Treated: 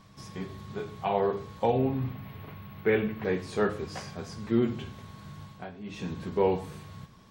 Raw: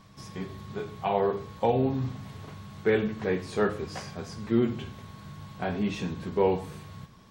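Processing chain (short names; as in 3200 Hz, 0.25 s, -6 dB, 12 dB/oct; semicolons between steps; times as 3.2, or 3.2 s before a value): 1.78–3.25 EQ curve 1600 Hz 0 dB, 2400 Hz +4 dB, 8100 Hz -20 dB, 14000 Hz +12 dB; 5.41–6.13 dip -13.5 dB, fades 0.30 s; gain -1 dB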